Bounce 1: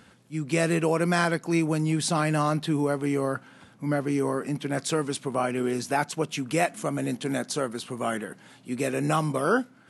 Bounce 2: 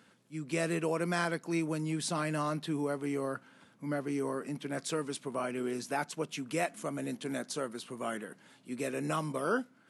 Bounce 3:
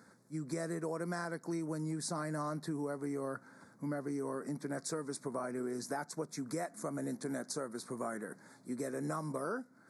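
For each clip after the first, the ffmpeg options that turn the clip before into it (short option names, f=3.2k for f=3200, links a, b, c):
-af "highpass=150,bandreject=f=770:w=12,volume=-7.5dB"
-af "acompressor=threshold=-38dB:ratio=4,asuperstop=centerf=2900:order=4:qfactor=1.1,volume=2.5dB"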